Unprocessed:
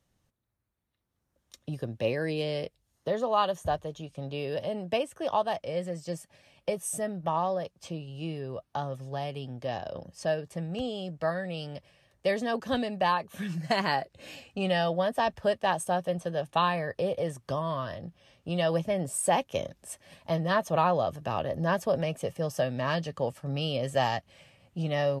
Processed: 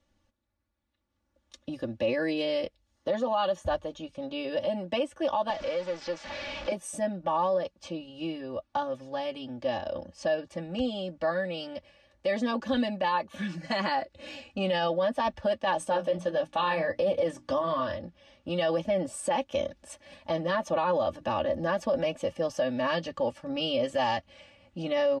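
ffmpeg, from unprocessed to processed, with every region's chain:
-filter_complex "[0:a]asettb=1/sr,asplit=3[a][b][c];[a]atrim=end=5.504[d];[b]atrim=start=5.5:end=6.72,asetpts=PTS-STARTPTS,afade=t=in:d=0.004:c=qsin,afade=t=out:st=1.216:d=0.004:c=qsin,aeval=exprs='val(0)+0.5*0.0211*sgn(val(0))':c=same,lowpass=f=5.9k:w=0.5412,lowpass=f=5.9k:w=1.3066,acrossover=split=360|4300[e][f][g];[e]acompressor=threshold=-48dB:ratio=4[h];[f]acompressor=threshold=-33dB:ratio=4[i];[g]acompressor=threshold=-53dB:ratio=4[j];[h][i][j]amix=inputs=3:normalize=0[k];[c]atrim=start=6.716[l];[d][k]acrossfade=d=0.004:c1=hsin:c2=qsin[m];[m][l]acrossfade=d=0.004:c1=qsin:c2=hsin,asettb=1/sr,asplit=3[n][o][p];[n]atrim=end=15.764[q];[o]atrim=start=15.76:end=17.97,asetpts=PTS-STARTPTS,afade=t=in:d=0.004:c=qsin,afade=t=out:st=2.206:d=0.004:c=qsin,bandreject=f=60:t=h:w=6,bandreject=f=120:t=h:w=6,bandreject=f=180:t=h:w=6,bandreject=f=240:t=h:w=6,bandreject=f=300:t=h:w=6,acontrast=36,flanger=delay=6.1:depth=7.7:regen=-50:speed=1.5:shape=triangular[r];[p]atrim=start=17.966[s];[q][r]acrossfade=d=0.004:c1=hsin:c2=qsin[t];[t][s]acrossfade=d=0.004:c1=qsin:c2=hsin,lowpass=5.6k,aecho=1:1:3.5:0.97,alimiter=limit=-19dB:level=0:latency=1:release=30"

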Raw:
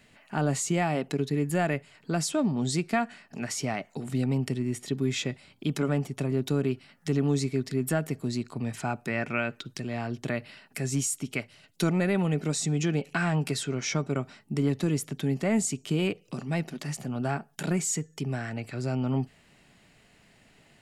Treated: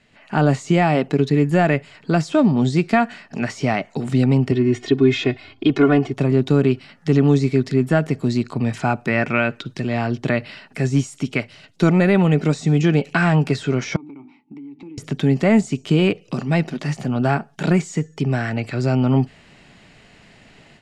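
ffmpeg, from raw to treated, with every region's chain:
-filter_complex "[0:a]asettb=1/sr,asplit=3[a][b][c];[a]atrim=end=4.514[d];[b]atrim=start=4.51:end=6.14,asetpts=PTS-STARTPTS,afade=t=in:d=0.004:c=qsin,afade=t=out:st=1.626:d=0.004:c=qsin,lowpass=4k,aecho=1:1:2.8:0.91,atrim=end_sample=71883[e];[c]atrim=start=6.136[f];[d][e]acrossfade=d=0.004:c1=hsin:c2=qsin[g];[g][f]acrossfade=d=0.004:c1=qsin:c2=hsin,asettb=1/sr,asplit=3[h][i][j];[h]atrim=end=13.964[k];[i]atrim=start=13.96:end=14.98,asetpts=PTS-STARTPTS,afade=t=in:d=0.004:c=qsin,afade=t=out:st=1.016:d=0.004:c=qsin,asplit=3[l][m][n];[l]bandpass=f=300:t=q:w=8,volume=0dB[o];[m]bandpass=f=870:t=q:w=8,volume=-6dB[p];[n]bandpass=f=2.24k:t=q:w=8,volume=-9dB[q];[o][p][q]amix=inputs=3:normalize=0,bandreject=f=50:t=h:w=6,bandreject=f=100:t=h:w=6,bandreject=f=150:t=h:w=6,bandreject=f=200:t=h:w=6,bandreject=f=250:t=h:w=6,bandreject=f=300:t=h:w=6,bandreject=f=350:t=h:w=6,acompressor=threshold=-45dB:ratio=12:attack=3.2:release=140:knee=1:detection=peak[r];[j]atrim=start=14.976[s];[k][r]acrossfade=d=0.004:c1=hsin:c2=qsin[t];[t][s]acrossfade=d=0.004:c1=qsin:c2=hsin,deesser=1,lowpass=6.2k,dynaudnorm=f=120:g=3:m=11dB"

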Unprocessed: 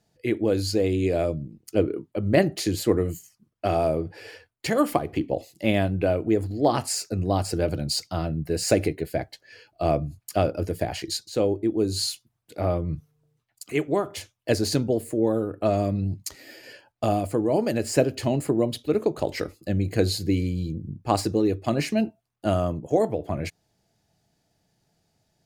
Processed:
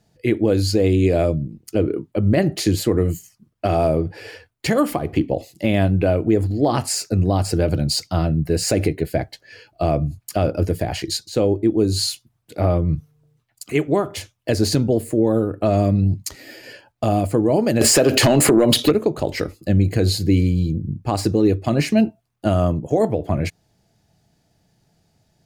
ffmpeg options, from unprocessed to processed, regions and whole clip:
-filter_complex "[0:a]asettb=1/sr,asplit=3[a][b][c];[a]atrim=end=17.814[d];[b]atrim=start=17.81:end=18.91,asetpts=PTS-STARTPTS,afade=t=in:d=0.004:c=qsin,afade=t=out:st=1.096:d=0.004:c=qsin,highpass=f=540:p=1,acompressor=threshold=-34dB:ratio=16:attack=3.2:release=140:knee=1:detection=peak,aeval=exprs='0.282*sin(PI/2*8.91*val(0)/0.282)':c=same[e];[c]atrim=start=18.906[f];[d][e]acrossfade=d=0.004:c1=hsin:c2=qsin[g];[g][f]acrossfade=d=0.004:c1=qsin:c2=hsin,alimiter=limit=-13.5dB:level=0:latency=1:release=94,bass=f=250:g=4,treble=f=4k:g=-1,volume=5.5dB"

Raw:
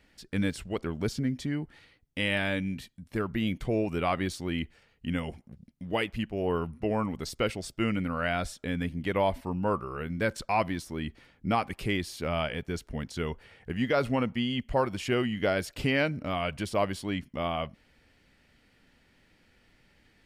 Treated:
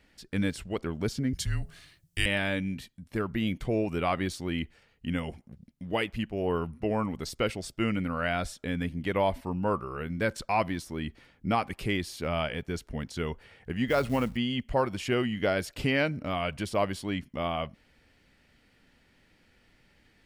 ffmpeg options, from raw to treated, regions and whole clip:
-filter_complex "[0:a]asettb=1/sr,asplit=3[a][b][c];[a]atrim=end=1.334[d];[b]atrim=start=1.33:end=2.26,asetpts=PTS-STARTPTS,afade=t=in:d=0.004:c=qsin,afade=t=out:st=0.926:d=0.004:c=qsin,bass=f=250:g=4,treble=f=4k:g=14,bandreject=f=85.26:t=h:w=4,bandreject=f=170.52:t=h:w=4,bandreject=f=255.78:t=h:w=4,bandreject=f=341.04:t=h:w=4,bandreject=f=426.3:t=h:w=4,bandreject=f=511.56:t=h:w=4,bandreject=f=596.82:t=h:w=4,bandreject=f=682.08:t=h:w=4,bandreject=f=767.34:t=h:w=4,bandreject=f=852.6:t=h:w=4,bandreject=f=937.86:t=h:w=4,bandreject=f=1.02312k:t=h:w=4,afreqshift=-180[e];[c]atrim=start=2.256[f];[d][e]acrossfade=d=0.004:c1=hsin:c2=qsin[g];[g][f]acrossfade=d=0.004:c1=qsin:c2=hsin,asettb=1/sr,asplit=3[h][i][j];[h]atrim=end=13.884[k];[i]atrim=start=13.88:end=14.37,asetpts=PTS-STARTPTS,afade=t=in:d=0.004:c=qsin,afade=t=out:st=0.486:d=0.004:c=qsin,aeval=exprs='val(0)+0.00631*(sin(2*PI*50*n/s)+sin(2*PI*2*50*n/s)/2+sin(2*PI*3*50*n/s)/3+sin(2*PI*4*50*n/s)/4+sin(2*PI*5*50*n/s)/5)':c=same,acrusher=bits=6:mode=log:mix=0:aa=0.000001[l];[j]atrim=start=14.366[m];[k][l]acrossfade=d=0.004:c1=hsin:c2=qsin[n];[n][m]acrossfade=d=0.004:c1=qsin:c2=hsin"

